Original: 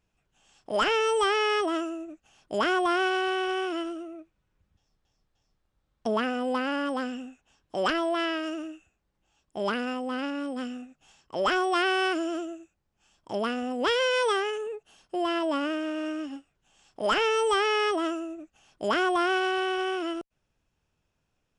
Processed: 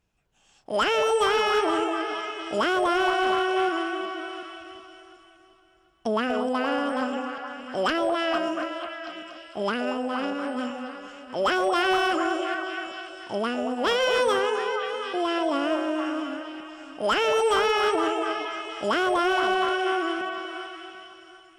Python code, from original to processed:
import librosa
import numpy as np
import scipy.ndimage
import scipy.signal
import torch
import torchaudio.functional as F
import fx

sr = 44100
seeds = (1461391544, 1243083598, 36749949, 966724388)

y = fx.reverse_delay_fb(x, sr, ms=369, feedback_pct=47, wet_db=-11.5)
y = fx.echo_stepped(y, sr, ms=236, hz=620.0, octaves=0.7, feedback_pct=70, wet_db=-2)
y = fx.clip_asym(y, sr, top_db=-18.5, bottom_db=-16.5)
y = F.gain(torch.from_numpy(y), 1.5).numpy()